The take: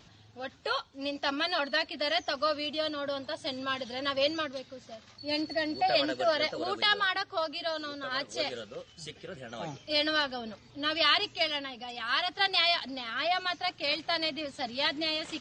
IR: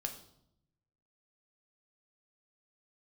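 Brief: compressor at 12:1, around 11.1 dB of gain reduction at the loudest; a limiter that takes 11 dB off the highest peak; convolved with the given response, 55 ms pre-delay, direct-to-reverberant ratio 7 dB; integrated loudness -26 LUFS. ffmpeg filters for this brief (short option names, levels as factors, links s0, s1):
-filter_complex "[0:a]acompressor=threshold=0.0251:ratio=12,alimiter=level_in=2:limit=0.0631:level=0:latency=1,volume=0.501,asplit=2[s0][s1];[1:a]atrim=start_sample=2205,adelay=55[s2];[s1][s2]afir=irnorm=-1:irlink=0,volume=0.473[s3];[s0][s3]amix=inputs=2:normalize=0,volume=4.47"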